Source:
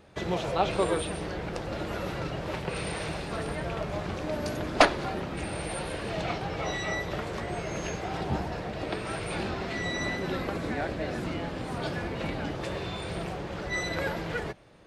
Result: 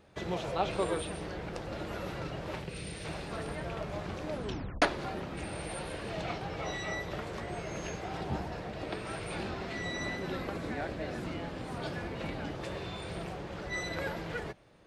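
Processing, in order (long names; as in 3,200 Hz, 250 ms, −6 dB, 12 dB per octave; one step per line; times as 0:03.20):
0:02.64–0:03.05: parametric band 960 Hz −11.5 dB 1.9 octaves
0:04.32: tape stop 0.50 s
level −5 dB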